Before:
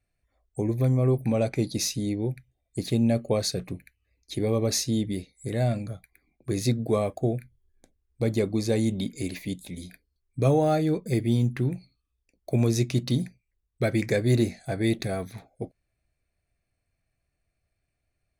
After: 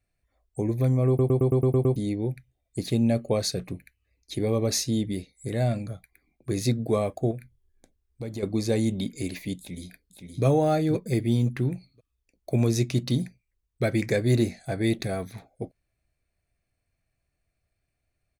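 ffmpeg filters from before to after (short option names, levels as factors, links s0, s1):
-filter_complex "[0:a]asettb=1/sr,asplit=3[s0][s1][s2];[s0]atrim=end=7.314[s3];[s1]atrim=start=7.31:end=8.43,asetpts=PTS-STARTPTS,afade=t=in:d=0.004:c=qsin,afade=t=out:st=1.116:d=0.004:c=qsin,acompressor=threshold=0.02:ratio=2.5:attack=3.2:release=140:knee=1:detection=peak[s4];[s2]atrim=start=8.426[s5];[s3][s4]acrossfade=d=0.004:c1=hsin:c2=qsin[s6];[s6][s5]acrossfade=d=0.004:c1=qsin:c2=hsin,asplit=2[s7][s8];[s8]afade=t=in:st=9.58:d=0.01,afade=t=out:st=10.44:d=0.01,aecho=0:1:520|1040|1560:0.501187|0.100237|0.0200475[s9];[s7][s9]amix=inputs=2:normalize=0,asplit=9[s10][s11][s12][s13][s14][s15][s16][s17][s18];[s10]atrim=end=1.192[s19];[s11]atrim=start=1.078:end=1.192[s20];[s12]atrim=start=1.078:end=1.192[s21];[s13]atrim=start=1.078:end=1.192[s22];[s14]atrim=start=1.078:end=1.192[s23];[s15]atrim=start=1.078:end=1.192[s24];[s16]atrim=start=1.078:end=1.192[s25];[s17]atrim=start=1.078:end=1.192[s26];[s18]atrim=start=1.958[s27];[s19][s20]acrossfade=d=0.004:c1=hsin:c2=hsin[s28];[s28][s21]acrossfade=d=0.004:c1=hsin:c2=hsin[s29];[s29][s22]acrossfade=d=0.004:c1=hsin:c2=hsin[s30];[s30][s23]acrossfade=d=0.004:c1=hsin:c2=hsin[s31];[s31][s24]acrossfade=d=0.004:c1=hsin:c2=hsin[s32];[s32][s25]acrossfade=d=0.004:c1=hsin:c2=hsin[s33];[s33][s26]acrossfade=d=0.004:c1=hsin:c2=hsin[s34];[s34][s27]acrossfade=d=0.004:c1=hsin:c2=hsin"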